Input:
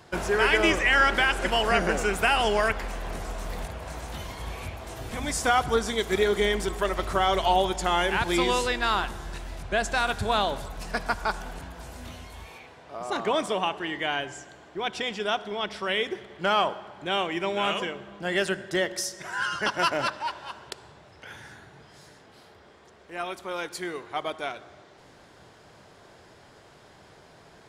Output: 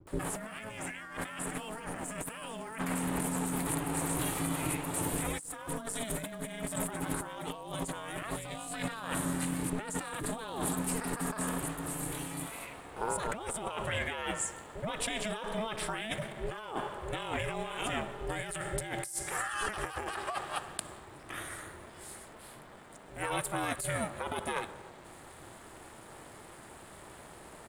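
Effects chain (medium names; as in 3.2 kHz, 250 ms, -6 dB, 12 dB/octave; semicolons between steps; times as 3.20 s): resonant high shelf 7.1 kHz +9 dB, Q 3; bands offset in time lows, highs 70 ms, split 260 Hz; ring modulator 220 Hz; compressor with a negative ratio -37 dBFS, ratio -1; hysteresis with a dead band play -56 dBFS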